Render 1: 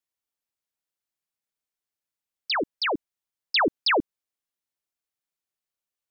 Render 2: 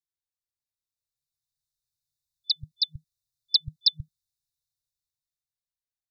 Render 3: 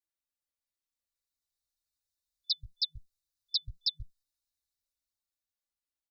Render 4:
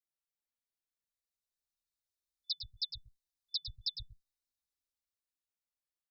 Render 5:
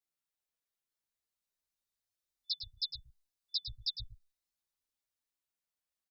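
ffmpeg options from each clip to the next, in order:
ffmpeg -i in.wav -af "afftfilt=real='re*(1-between(b*sr/4096,160,3500))':imag='im*(1-between(b*sr/4096,160,3500))':win_size=4096:overlap=0.75,highshelf=frequency=3700:gain=-10.5,dynaudnorm=framelen=230:gausssize=11:maxgain=11.5dB" out.wav
ffmpeg -i in.wav -filter_complex "[0:a]aecho=1:1:3.5:0.97,alimiter=limit=-14dB:level=0:latency=1:release=115,asplit=2[link_01][link_02];[link_02]adelay=8.6,afreqshift=-2.9[link_03];[link_01][link_03]amix=inputs=2:normalize=1,volume=-1.5dB" out.wav
ffmpeg -i in.wav -filter_complex "[0:a]asplit=2[link_01][link_02];[link_02]adelay=105,volume=-8dB,highshelf=frequency=4000:gain=-2.36[link_03];[link_01][link_03]amix=inputs=2:normalize=0,volume=-6dB" out.wav
ffmpeg -i in.wav -filter_complex "[0:a]asplit=2[link_01][link_02];[link_02]adelay=9.6,afreqshift=-0.4[link_03];[link_01][link_03]amix=inputs=2:normalize=1,volume=4dB" out.wav

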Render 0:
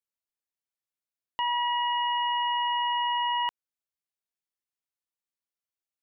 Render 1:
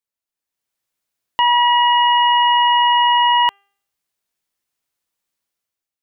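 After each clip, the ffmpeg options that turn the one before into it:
ffmpeg -i in.wav -af "bandreject=frequency=398.7:width_type=h:width=4,bandreject=frequency=797.4:width_type=h:width=4,bandreject=frequency=1196.1:width_type=h:width=4,bandreject=frequency=1594.8:width_type=h:width=4,bandreject=frequency=1993.5:width_type=h:width=4,bandreject=frequency=2392.2:width_type=h:width=4,bandreject=frequency=2790.9:width_type=h:width=4,bandreject=frequency=3189.6:width_type=h:width=4,dynaudnorm=framelen=160:gausssize=7:maxgain=10.5dB,volume=3dB" out.wav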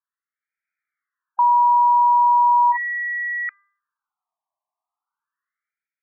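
ffmpeg -i in.wav -af "alimiter=limit=-14.5dB:level=0:latency=1:release=372,afftfilt=real='re*between(b*sr/1024,840*pow(1800/840,0.5+0.5*sin(2*PI*0.38*pts/sr))/1.41,840*pow(1800/840,0.5+0.5*sin(2*PI*0.38*pts/sr))*1.41)':imag='im*between(b*sr/1024,840*pow(1800/840,0.5+0.5*sin(2*PI*0.38*pts/sr))/1.41,840*pow(1800/840,0.5+0.5*sin(2*PI*0.38*pts/sr))*1.41)':win_size=1024:overlap=0.75,volume=5.5dB" out.wav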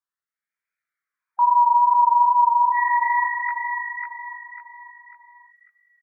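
ffmpeg -i in.wav -af "flanger=delay=16.5:depth=3.5:speed=2.5,aecho=1:1:546|1092|1638|2184|2730:0.668|0.267|0.107|0.0428|0.0171,volume=1dB" out.wav

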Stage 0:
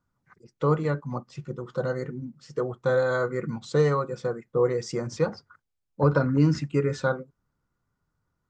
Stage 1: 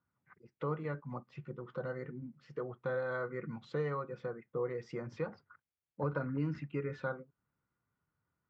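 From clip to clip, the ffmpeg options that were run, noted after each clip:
ffmpeg -i in.wav -af "highpass=77,acompressor=threshold=-37dB:ratio=1.5,lowpass=frequency=2400:width_type=q:width=1.5,volume=-7dB" out.wav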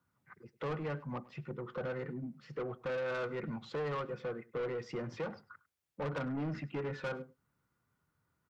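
ffmpeg -i in.wav -filter_complex "[0:a]acrossover=split=120|2400[link_01][link_02][link_03];[link_01]acompressor=threshold=-59dB:ratio=6[link_04];[link_04][link_02][link_03]amix=inputs=3:normalize=0,asoftclip=type=tanh:threshold=-38.5dB,aecho=1:1:101:0.0944,volume=5.5dB" out.wav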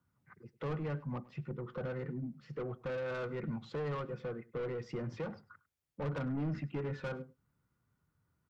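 ffmpeg -i in.wav -af "lowshelf=frequency=240:gain=9,volume=-3.5dB" out.wav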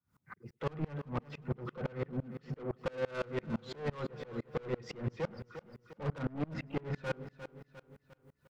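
ffmpeg -i in.wav -filter_complex "[0:a]asoftclip=type=tanh:threshold=-38dB,asplit=2[link_01][link_02];[link_02]aecho=0:1:353|706|1059|1412|1765:0.266|0.128|0.0613|0.0294|0.0141[link_03];[link_01][link_03]amix=inputs=2:normalize=0,aeval=exprs='val(0)*pow(10,-29*if(lt(mod(-5.9*n/s,1),2*abs(-5.9)/1000),1-mod(-5.9*n/s,1)/(2*abs(-5.9)/1000),(mod(-5.9*n/s,1)-2*abs(-5.9)/1000)/(1-2*abs(-5.9)/1000))/20)':channel_layout=same,volume=12dB" out.wav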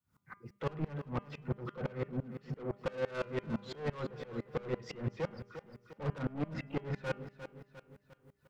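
ffmpeg -i in.wav -af "bandreject=frequency=201:width_type=h:width=4,bandreject=frequency=402:width_type=h:width=4,bandreject=frequency=603:width_type=h:width=4,bandreject=frequency=804:width_type=h:width=4,bandreject=frequency=1005:width_type=h:width=4,bandreject=frequency=1206:width_type=h:width=4,bandreject=frequency=1407:width_type=h:width=4,bandreject=frequency=1608:width_type=h:width=4,bandreject=frequency=1809:width_type=h:width=4,bandreject=frequency=2010:width_type=h:width=4,bandreject=frequency=2211:width_type=h:width=4,bandreject=frequency=2412:width_type=h:width=4,bandreject=frequency=2613:width_type=h:width=4,bandreject=frequency=2814:width_type=h:width=4,bandreject=frequency=3015:width_type=h:width=4,bandreject=frequency=3216:width_type=h:width=4" out.wav

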